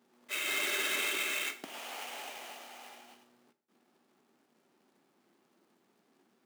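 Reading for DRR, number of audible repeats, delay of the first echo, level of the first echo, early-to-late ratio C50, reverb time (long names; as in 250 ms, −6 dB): 11.0 dB, no echo audible, no echo audible, no echo audible, 15.5 dB, 0.50 s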